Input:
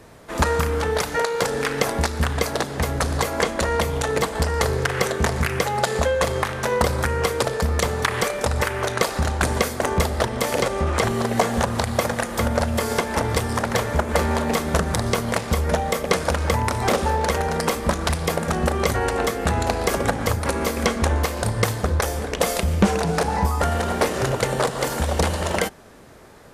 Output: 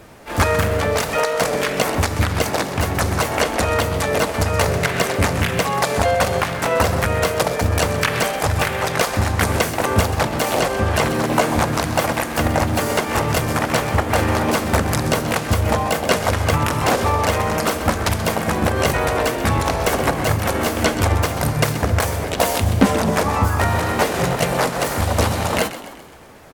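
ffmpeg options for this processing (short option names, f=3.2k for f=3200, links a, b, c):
-filter_complex "[0:a]asplit=6[a][b][c][d][e][f];[b]adelay=129,afreqshift=43,volume=-13dB[g];[c]adelay=258,afreqshift=86,volume=-18.7dB[h];[d]adelay=387,afreqshift=129,volume=-24.4dB[i];[e]adelay=516,afreqshift=172,volume=-30dB[j];[f]adelay=645,afreqshift=215,volume=-35.7dB[k];[a][g][h][i][j][k]amix=inputs=6:normalize=0,asplit=2[l][m];[m]asetrate=58866,aresample=44100,atempo=0.749154,volume=0dB[n];[l][n]amix=inputs=2:normalize=0"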